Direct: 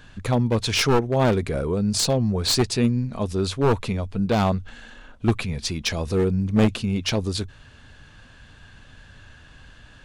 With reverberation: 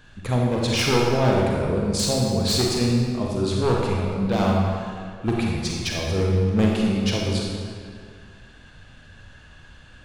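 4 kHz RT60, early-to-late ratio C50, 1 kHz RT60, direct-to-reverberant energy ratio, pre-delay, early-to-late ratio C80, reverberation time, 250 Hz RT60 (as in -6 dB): 1.5 s, -1.0 dB, 2.0 s, -2.5 dB, 33 ms, 1.0 dB, 2.0 s, 2.1 s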